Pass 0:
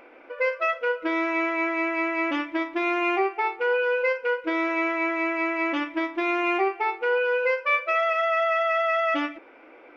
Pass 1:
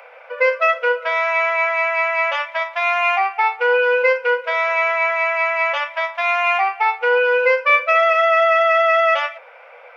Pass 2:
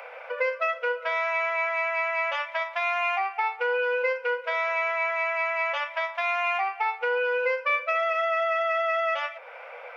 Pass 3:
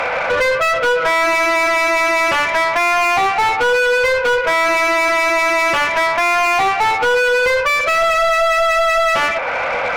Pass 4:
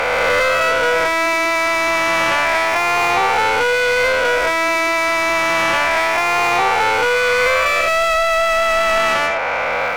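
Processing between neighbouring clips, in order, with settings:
Butterworth high-pass 480 Hz 96 dB per octave; level +8.5 dB
downward compressor 2 to 1, threshold −33 dBFS, peak gain reduction 12.5 dB; level +1 dB
mid-hump overdrive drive 29 dB, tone 2,200 Hz, clips at −14.5 dBFS; level +6.5 dB
peak hold with a rise ahead of every peak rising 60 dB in 2.97 s; level −3.5 dB

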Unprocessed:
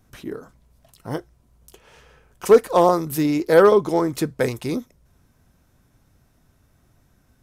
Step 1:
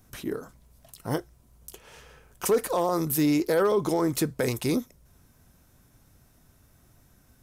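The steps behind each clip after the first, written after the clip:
high-shelf EQ 6,600 Hz +8.5 dB
brickwall limiter −16 dBFS, peak gain reduction 12 dB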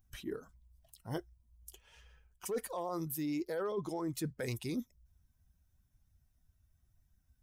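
spectral dynamics exaggerated over time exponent 1.5
reversed playback
downward compressor 6 to 1, threshold −35 dBFS, peak gain reduction 14.5 dB
reversed playback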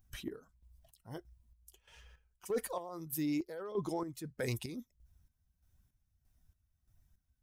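square-wave tremolo 1.6 Hz, depth 65%, duty 45%
level +2 dB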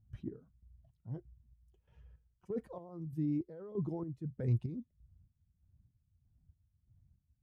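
resonant band-pass 120 Hz, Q 1.3
level +8.5 dB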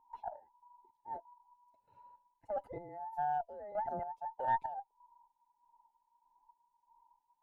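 frequency inversion band by band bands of 1,000 Hz
tilt shelving filter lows +6 dB, about 670 Hz
harmonic generator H 2 −12 dB, 4 −32 dB, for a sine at −23 dBFS

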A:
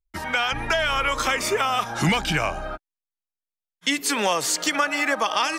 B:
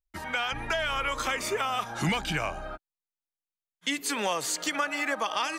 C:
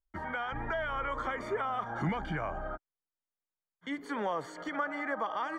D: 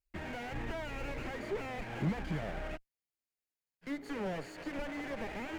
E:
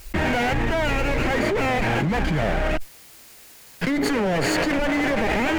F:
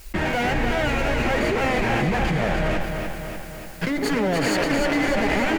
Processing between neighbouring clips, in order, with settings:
notch filter 5,400 Hz, Q 13; level −6.5 dB
in parallel at +3 dB: brickwall limiter −27 dBFS, peak gain reduction 11.5 dB; on the sum: Savitzky-Golay smoothing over 41 samples; level −7.5 dB
lower of the sound and its delayed copy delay 0.43 ms; slew-rate limiting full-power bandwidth 12 Hz
envelope flattener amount 100%; level +7 dB
flanger 1.7 Hz, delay 4.5 ms, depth 1.7 ms, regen −66%; repeating echo 295 ms, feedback 60%, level −5.5 dB; level +3 dB

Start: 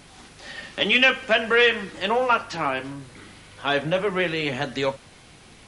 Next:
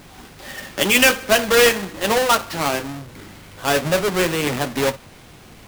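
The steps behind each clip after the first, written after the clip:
each half-wave held at its own peak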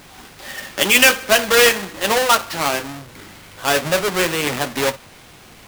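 low-shelf EQ 500 Hz −6.5 dB
level +3 dB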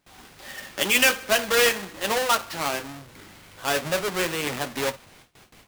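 noise gate with hold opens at −34 dBFS
level −7 dB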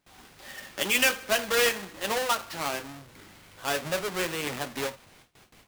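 every ending faded ahead of time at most 240 dB per second
level −4 dB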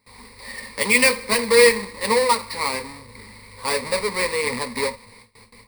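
EQ curve with evenly spaced ripples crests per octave 0.93, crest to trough 18 dB
level +4 dB

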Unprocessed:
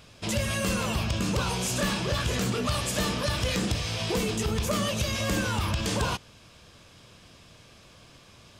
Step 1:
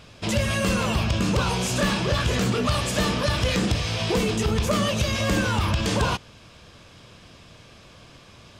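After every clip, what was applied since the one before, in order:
high-shelf EQ 7,300 Hz −8.5 dB
level +5 dB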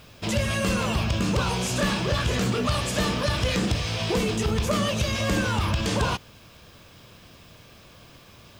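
background noise violet −61 dBFS
level −1.5 dB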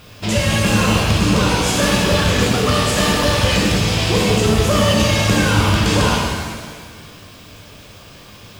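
reverb with rising layers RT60 1.5 s, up +7 semitones, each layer −8 dB, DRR −2 dB
level +5 dB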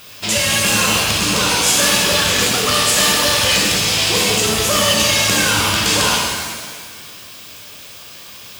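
spectral tilt +3 dB per octave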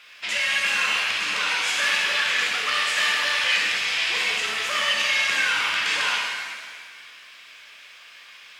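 resonant band-pass 2,000 Hz, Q 2

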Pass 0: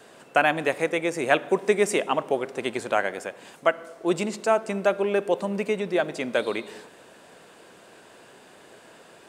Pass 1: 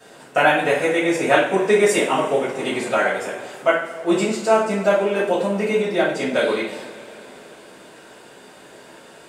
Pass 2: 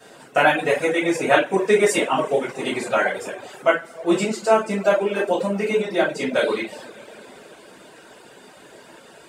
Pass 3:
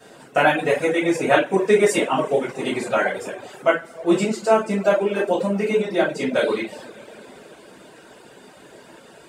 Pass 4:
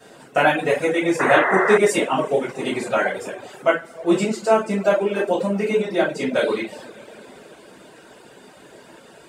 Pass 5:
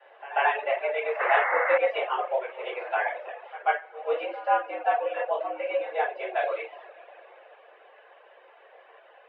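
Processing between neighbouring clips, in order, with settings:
coupled-rooms reverb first 0.45 s, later 3.8 s, from −21 dB, DRR −10 dB; level −4.5 dB
reverb reduction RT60 0.65 s
low-shelf EQ 440 Hz +4.5 dB; level −1.5 dB
sound drawn into the spectrogram noise, 0:01.19–0:01.78, 370–2,100 Hz −20 dBFS
echo ahead of the sound 139 ms −17.5 dB; single-sideband voice off tune +120 Hz 350–2,800 Hz; level −6.5 dB

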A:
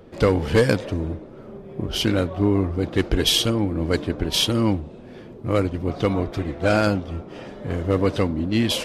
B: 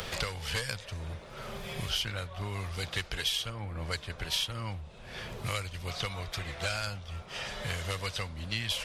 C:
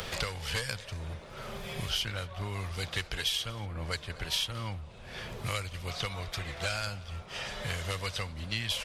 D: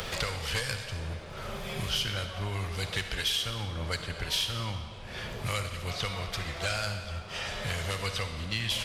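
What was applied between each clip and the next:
guitar amp tone stack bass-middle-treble 10-0-10; multiband upward and downward compressor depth 100%; level −2 dB
single-tap delay 232 ms −22 dB
in parallel at −11 dB: gain into a clipping stage and back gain 32.5 dB; on the sum: comb and all-pass reverb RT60 1.7 s, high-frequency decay 0.9×, pre-delay 15 ms, DRR 6.5 dB

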